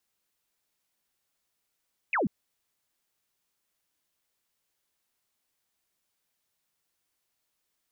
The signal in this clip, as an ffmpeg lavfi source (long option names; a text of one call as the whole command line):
ffmpeg -f lavfi -i "aevalsrc='0.0668*clip(t/0.002,0,1)*clip((0.14-t)/0.002,0,1)*sin(2*PI*2700*0.14/log(160/2700)*(exp(log(160/2700)*t/0.14)-1))':duration=0.14:sample_rate=44100" out.wav